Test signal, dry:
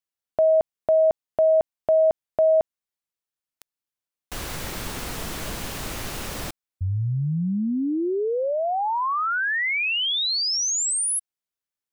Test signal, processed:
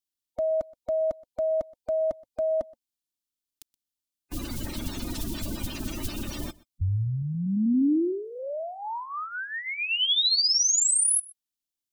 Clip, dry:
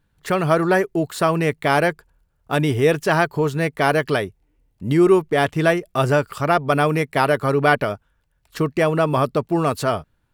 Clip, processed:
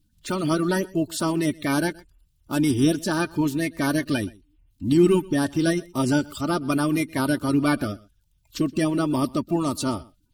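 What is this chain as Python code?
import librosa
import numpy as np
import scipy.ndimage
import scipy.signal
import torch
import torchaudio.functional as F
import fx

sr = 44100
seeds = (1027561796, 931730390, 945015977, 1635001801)

p1 = fx.spec_quant(x, sr, step_db=30)
p2 = fx.band_shelf(p1, sr, hz=980.0, db=-11.5, octaves=2.8)
p3 = p2 + 0.51 * np.pad(p2, (int(3.3 * sr / 1000.0), 0))[:len(p2)]
p4 = p3 + fx.echo_single(p3, sr, ms=124, db=-23.0, dry=0)
y = p4 * librosa.db_to_amplitude(1.0)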